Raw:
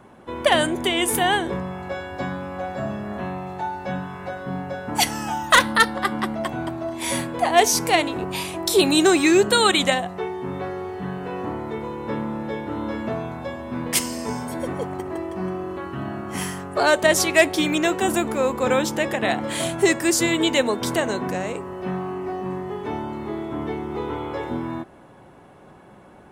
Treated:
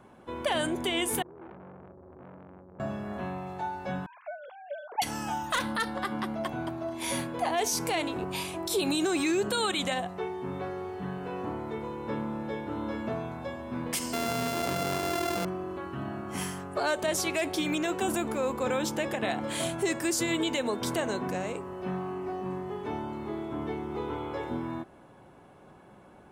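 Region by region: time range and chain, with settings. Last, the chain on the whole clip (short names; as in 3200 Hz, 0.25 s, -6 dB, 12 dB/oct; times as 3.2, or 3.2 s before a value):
1.22–2.8 compressor 5:1, threshold -29 dBFS + rippled Chebyshev low-pass 510 Hz, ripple 3 dB + core saturation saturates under 1000 Hz
4.06–5.02 sine-wave speech + bell 1100 Hz -3.5 dB 1.1 oct
6.06–7.6 HPF 61 Hz + notch 7900 Hz, Q 9.2
14.13–15.45 sample sorter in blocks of 64 samples + HPF 81 Hz + fast leveller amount 100%
whole clip: notch 1900 Hz, Q 17; limiter -13.5 dBFS; gain -6 dB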